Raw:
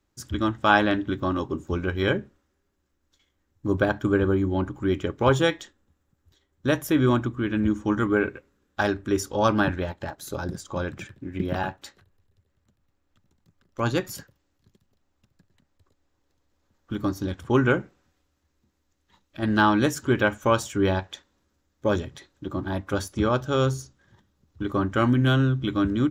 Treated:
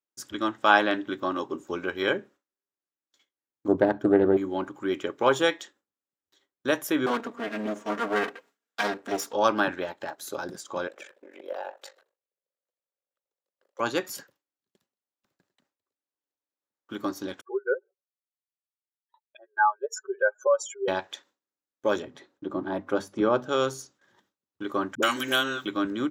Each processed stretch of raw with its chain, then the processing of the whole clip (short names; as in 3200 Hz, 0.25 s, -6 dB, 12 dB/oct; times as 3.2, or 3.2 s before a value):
3.68–4.37 tilt shelf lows +10 dB, about 720 Hz + Doppler distortion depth 0.3 ms
7.06–9.33 minimum comb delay 4.3 ms + mismatched tape noise reduction encoder only
10.87–13.8 compressor 5:1, threshold -33 dBFS + ring modulator 24 Hz + resonant high-pass 520 Hz, resonance Q 4.4
17.41–20.88 spectral contrast raised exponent 3 + brick-wall FIR high-pass 380 Hz
22.02–23.49 HPF 190 Hz 6 dB/oct + tilt -3.5 dB/oct + notches 50/100/150/200/250 Hz
24.95–25.66 RIAA curve recording + dispersion highs, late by 76 ms, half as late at 380 Hz + three-band squash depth 100%
whole clip: HPF 350 Hz 12 dB/oct; gate with hold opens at -53 dBFS